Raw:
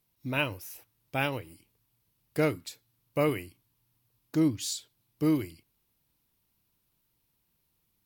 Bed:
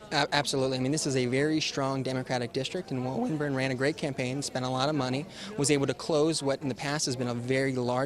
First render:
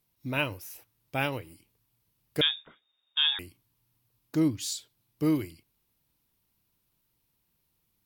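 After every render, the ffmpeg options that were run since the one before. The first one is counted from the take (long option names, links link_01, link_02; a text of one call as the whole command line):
ffmpeg -i in.wav -filter_complex "[0:a]asettb=1/sr,asplit=3[link_01][link_02][link_03];[link_01]atrim=end=2.414[link_04];[link_02]atrim=start=2.41:end=3.39,asetpts=PTS-STARTPTS,afade=type=in:duration=0.004:curve=qsin,afade=type=out:start_time=0.976:duration=0.004:curve=qsin,lowpass=frequency=3200:width_type=q:width=0.5098,lowpass=frequency=3200:width_type=q:width=0.6013,lowpass=frequency=3200:width_type=q:width=0.9,lowpass=frequency=3200:width_type=q:width=2.563,afreqshift=-3800[link_05];[link_03]atrim=start=3.386[link_06];[link_04][link_05]acrossfade=duration=0.004:curve1=hsin:curve2=qsin[link_07];[link_07][link_06]acrossfade=duration=0.004:curve1=qsin:curve2=hsin" out.wav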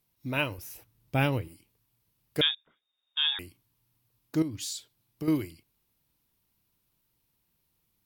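ffmpeg -i in.wav -filter_complex "[0:a]asettb=1/sr,asplit=3[link_01][link_02][link_03];[link_01]atrim=end=0.584[link_04];[link_02]atrim=start=0.58:end=1.48,asetpts=PTS-STARTPTS,afade=type=in:duration=0.004:curve=qsin,afade=type=out:start_time=0.896:duration=0.004:curve=qsin,lowshelf=frequency=300:gain=10.5[link_05];[link_03]atrim=start=1.476[link_06];[link_04][link_05]acrossfade=duration=0.004:curve1=hsin:curve2=qsin[link_07];[link_07][link_06]acrossfade=duration=0.004:curve1=qsin:curve2=hsin,asettb=1/sr,asplit=3[link_08][link_09][link_10];[link_08]atrim=end=4.424[link_11];[link_09]atrim=start=4.42:end=5.28,asetpts=PTS-STARTPTS,afade=type=in:duration=0.004:curve=qsin,afade=type=out:start_time=0.856:duration=0.004:curve=qsin,acompressor=threshold=-31dB:ratio=6:attack=3.2:release=140:knee=1:detection=peak[link_12];[link_10]atrim=start=5.276[link_13];[link_11][link_12]acrossfade=duration=0.004:curve1=hsin:curve2=qsin[link_14];[link_14][link_13]acrossfade=duration=0.004:curve1=qsin:curve2=hsin,asplit=2[link_15][link_16];[link_15]atrim=end=2.55,asetpts=PTS-STARTPTS,afade=type=out:start_time=2.546:duration=0.004:curve=hsin:silence=0.0841395[link_17];[link_16]atrim=start=2.55,asetpts=PTS-STARTPTS,afade=type=in:duration=0.88:silence=0.0841395[link_18];[link_17][link_18]concat=n=2:v=0:a=1" out.wav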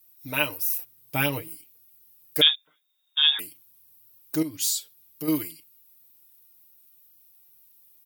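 ffmpeg -i in.wav -af "aemphasis=mode=production:type=bsi,aecho=1:1:6.6:0.8" out.wav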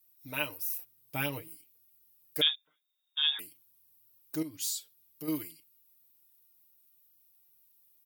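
ffmpeg -i in.wav -af "volume=-8.5dB" out.wav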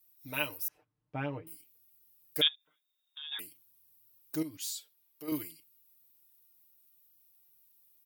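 ffmpeg -i in.wav -filter_complex "[0:a]asettb=1/sr,asplit=3[link_01][link_02][link_03];[link_01]atrim=end=0.684[link_04];[link_02]atrim=start=0.68:end=1.47,asetpts=PTS-STARTPTS,afade=type=in:duration=0.004:curve=qsin,afade=type=out:start_time=0.786:duration=0.004:curve=qsin,lowpass=1400[link_05];[link_03]atrim=start=1.466[link_06];[link_04][link_05]acrossfade=duration=0.004:curve1=hsin:curve2=qsin[link_07];[link_07][link_06]acrossfade=duration=0.004:curve1=qsin:curve2=hsin,asplit=3[link_08][link_09][link_10];[link_08]afade=type=out:start_time=2.47:duration=0.02[link_11];[link_09]acompressor=threshold=-49dB:ratio=2.5:attack=3.2:release=140:knee=1:detection=peak,afade=type=in:start_time=2.47:duration=0.02,afade=type=out:start_time=3.31:duration=0.02[link_12];[link_10]afade=type=in:start_time=3.31:duration=0.02[link_13];[link_11][link_12][link_13]amix=inputs=3:normalize=0,asettb=1/sr,asplit=3[link_14][link_15][link_16];[link_14]atrim=end=4.574[link_17];[link_15]atrim=start=4.57:end=5.32,asetpts=PTS-STARTPTS,afade=type=in:duration=0.004:curve=qsin,afade=type=out:start_time=0.746:duration=0.004:curve=qsin,bass=frequency=250:gain=-13,treble=frequency=4000:gain=-5[link_18];[link_16]atrim=start=5.316[link_19];[link_17][link_18]acrossfade=duration=0.004:curve1=hsin:curve2=qsin[link_20];[link_20][link_19]acrossfade=duration=0.004:curve1=qsin:curve2=hsin" out.wav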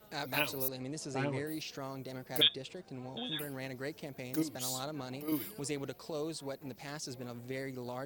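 ffmpeg -i in.wav -i bed.wav -filter_complex "[1:a]volume=-13dB[link_01];[0:a][link_01]amix=inputs=2:normalize=0" out.wav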